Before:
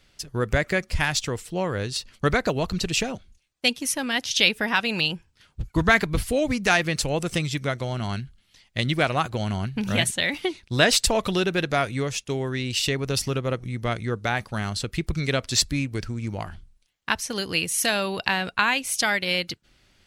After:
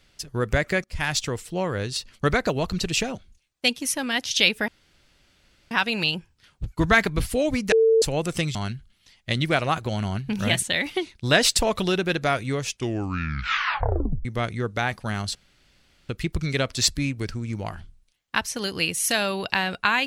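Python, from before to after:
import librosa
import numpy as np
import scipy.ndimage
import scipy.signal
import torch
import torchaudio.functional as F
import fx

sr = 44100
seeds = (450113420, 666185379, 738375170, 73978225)

y = fx.edit(x, sr, fx.fade_in_from(start_s=0.84, length_s=0.28, floor_db=-19.0),
    fx.insert_room_tone(at_s=4.68, length_s=1.03),
    fx.bleep(start_s=6.69, length_s=0.3, hz=448.0, db=-14.0),
    fx.cut(start_s=7.52, length_s=0.51),
    fx.tape_stop(start_s=12.15, length_s=1.58),
    fx.insert_room_tone(at_s=14.83, length_s=0.74), tone=tone)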